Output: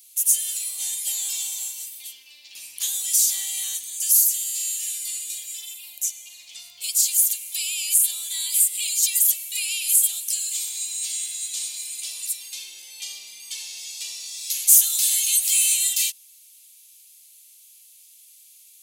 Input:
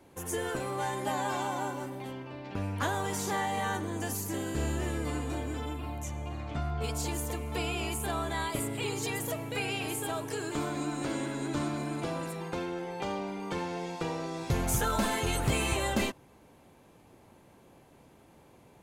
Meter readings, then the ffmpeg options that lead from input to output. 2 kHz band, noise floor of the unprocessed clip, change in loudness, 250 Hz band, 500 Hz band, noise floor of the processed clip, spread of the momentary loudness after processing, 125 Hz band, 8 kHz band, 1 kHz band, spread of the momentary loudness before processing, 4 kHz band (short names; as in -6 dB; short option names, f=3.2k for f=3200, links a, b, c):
-1.5 dB, -59 dBFS, +12.5 dB, under -35 dB, under -30 dB, -51 dBFS, 17 LU, under -40 dB, +20.5 dB, under -25 dB, 8 LU, +11.5 dB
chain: -af "aderivative,aexciter=amount=8.5:drive=9.9:freq=2.3k,volume=-8.5dB"